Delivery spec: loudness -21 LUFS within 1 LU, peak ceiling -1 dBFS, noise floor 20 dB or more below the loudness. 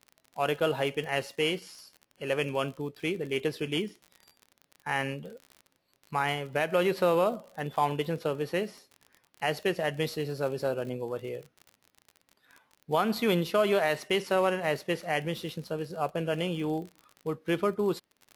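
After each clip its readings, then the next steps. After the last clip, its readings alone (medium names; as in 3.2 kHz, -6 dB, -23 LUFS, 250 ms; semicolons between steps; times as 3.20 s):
tick rate 42 per s; loudness -30.5 LUFS; peak level -12.5 dBFS; loudness target -21.0 LUFS
-> de-click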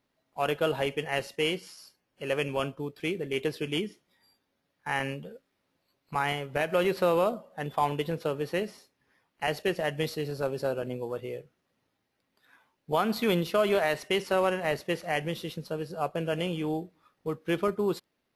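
tick rate 0 per s; loudness -30.5 LUFS; peak level -12.5 dBFS; loudness target -21.0 LUFS
-> trim +9.5 dB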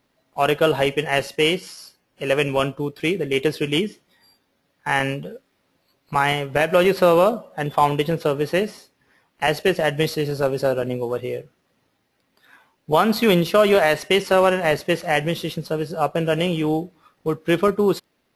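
loudness -21.0 LUFS; peak level -3.0 dBFS; noise floor -69 dBFS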